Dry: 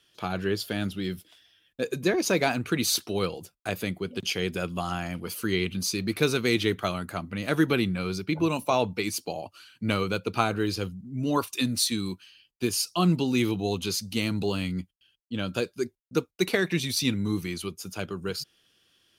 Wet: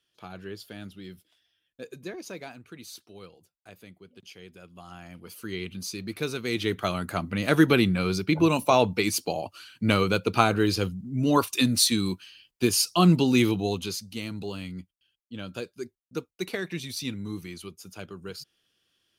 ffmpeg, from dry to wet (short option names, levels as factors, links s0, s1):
-af "volume=3.55,afade=t=out:st=1.82:d=0.79:silence=0.446684,afade=t=in:st=4.69:d=1.03:silence=0.251189,afade=t=in:st=6.44:d=0.78:silence=0.298538,afade=t=out:st=13.35:d=0.71:silence=0.281838"